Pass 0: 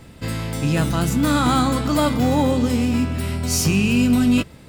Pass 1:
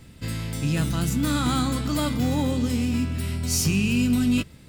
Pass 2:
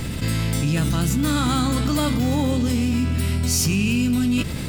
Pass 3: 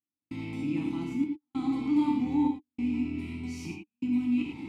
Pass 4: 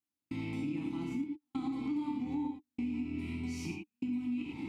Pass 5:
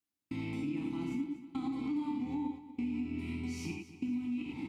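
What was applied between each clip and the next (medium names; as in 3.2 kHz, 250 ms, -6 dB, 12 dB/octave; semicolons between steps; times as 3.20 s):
peaking EQ 730 Hz -8 dB 2.3 oct; trim -2.5 dB
level flattener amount 70%
trance gate "..xxxxxx" 97 bpm -60 dB; vowel filter u; gated-style reverb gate 130 ms flat, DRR 0.5 dB
compression, threshold -33 dBFS, peak gain reduction 11.5 dB
feedback delay 240 ms, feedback 41%, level -14.5 dB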